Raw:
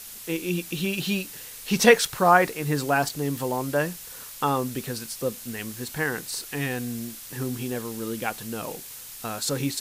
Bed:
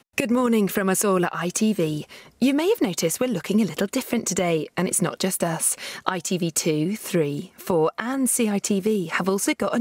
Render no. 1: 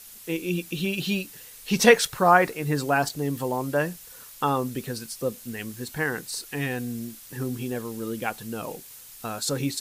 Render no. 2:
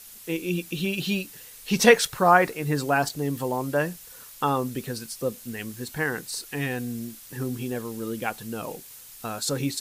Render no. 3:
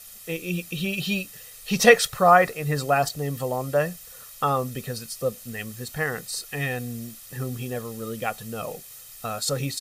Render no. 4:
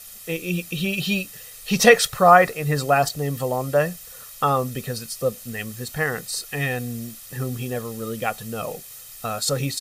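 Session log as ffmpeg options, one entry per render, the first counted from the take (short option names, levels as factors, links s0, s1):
-af "afftdn=nr=6:nf=-41"
-af anull
-af "aecho=1:1:1.6:0.57"
-af "volume=1.41,alimiter=limit=0.891:level=0:latency=1"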